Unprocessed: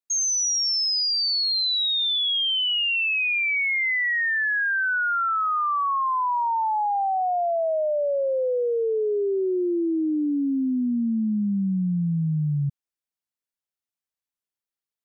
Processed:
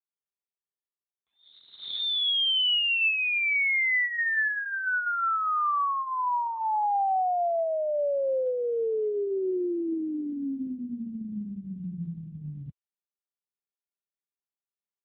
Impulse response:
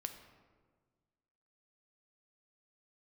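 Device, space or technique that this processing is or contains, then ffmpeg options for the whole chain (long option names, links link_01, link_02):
mobile call with aggressive noise cancelling: -af "highpass=frequency=120:poles=1,afftdn=noise_reduction=26:noise_floor=-40,volume=1dB" -ar 8000 -c:a libopencore_amrnb -b:a 7950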